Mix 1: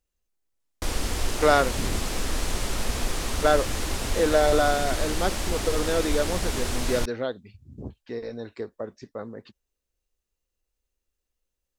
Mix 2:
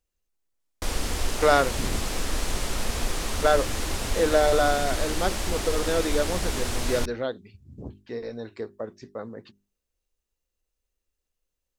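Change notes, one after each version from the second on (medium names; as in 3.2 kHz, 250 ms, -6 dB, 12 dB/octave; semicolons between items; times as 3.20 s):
master: add hum notches 50/100/150/200/250/300/350/400 Hz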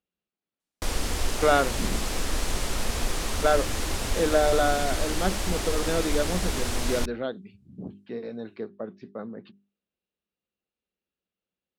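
speech: add cabinet simulation 150–3700 Hz, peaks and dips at 190 Hz +10 dB, 510 Hz -3 dB, 970 Hz -5 dB, 1.9 kHz -5 dB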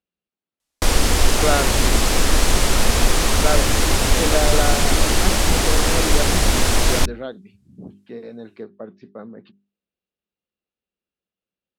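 background +11.5 dB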